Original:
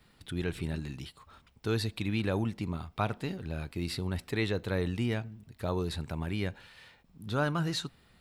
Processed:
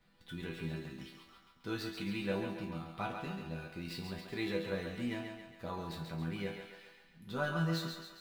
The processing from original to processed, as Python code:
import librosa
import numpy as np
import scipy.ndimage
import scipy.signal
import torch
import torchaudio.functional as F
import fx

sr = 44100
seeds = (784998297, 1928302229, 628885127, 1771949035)

y = scipy.ndimage.median_filter(x, 5, mode='constant')
y = fx.resonator_bank(y, sr, root=52, chord='minor', decay_s=0.33)
y = fx.echo_thinned(y, sr, ms=137, feedback_pct=54, hz=310.0, wet_db=-5.5)
y = F.gain(torch.from_numpy(y), 10.5).numpy()